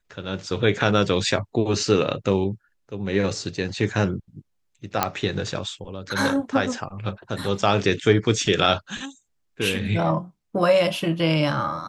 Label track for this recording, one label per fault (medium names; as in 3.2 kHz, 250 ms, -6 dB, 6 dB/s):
5.030000	5.030000	pop -3 dBFS